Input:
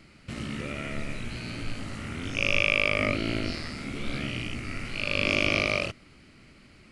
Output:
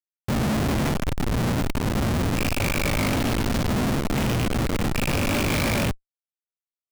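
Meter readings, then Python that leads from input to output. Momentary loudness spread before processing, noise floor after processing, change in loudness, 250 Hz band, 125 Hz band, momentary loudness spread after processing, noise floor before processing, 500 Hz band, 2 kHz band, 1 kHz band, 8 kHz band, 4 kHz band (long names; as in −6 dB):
13 LU, below −85 dBFS, +4.0 dB, +9.5 dB, +11.0 dB, 3 LU, −55 dBFS, +5.0 dB, −2.0 dB, +9.0 dB, +12.5 dB, +1.0 dB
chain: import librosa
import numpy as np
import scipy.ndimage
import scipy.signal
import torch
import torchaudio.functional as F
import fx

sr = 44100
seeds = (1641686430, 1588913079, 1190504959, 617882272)

y = fx.low_shelf_res(x, sr, hz=310.0, db=6.5, q=1.5)
y = fx.schmitt(y, sr, flips_db=-34.0)
y = F.gain(torch.from_numpy(y), 4.0).numpy()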